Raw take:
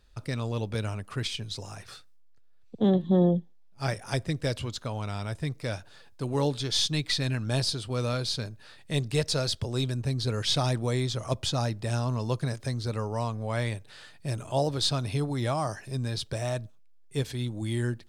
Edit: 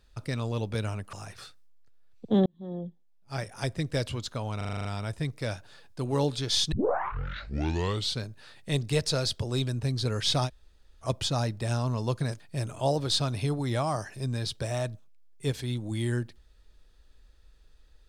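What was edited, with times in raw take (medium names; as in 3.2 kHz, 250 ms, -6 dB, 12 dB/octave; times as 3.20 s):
1.13–1.63 s: delete
2.96–4.46 s: fade in
5.07 s: stutter 0.04 s, 8 plays
6.94 s: tape start 1.48 s
10.69–11.26 s: room tone, crossfade 0.06 s
12.62–14.11 s: delete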